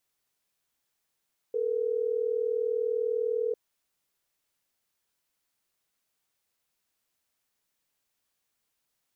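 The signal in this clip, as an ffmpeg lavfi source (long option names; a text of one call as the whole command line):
ffmpeg -f lavfi -i "aevalsrc='0.0376*(sin(2*PI*440*t)+sin(2*PI*480*t))*clip(min(mod(t,6),2-mod(t,6))/0.005,0,1)':duration=3.12:sample_rate=44100" out.wav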